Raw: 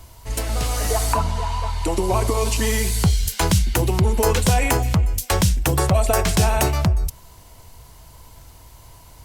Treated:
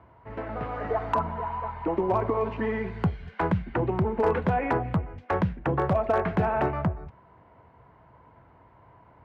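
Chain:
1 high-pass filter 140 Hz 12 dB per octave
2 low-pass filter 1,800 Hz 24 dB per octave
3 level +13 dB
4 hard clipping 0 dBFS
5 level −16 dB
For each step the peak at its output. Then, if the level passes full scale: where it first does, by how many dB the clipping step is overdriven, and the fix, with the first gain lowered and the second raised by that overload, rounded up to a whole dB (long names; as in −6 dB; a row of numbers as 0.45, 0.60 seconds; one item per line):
−5.5, −7.5, +5.5, 0.0, −16.0 dBFS
step 3, 5.5 dB
step 3 +7 dB, step 5 −10 dB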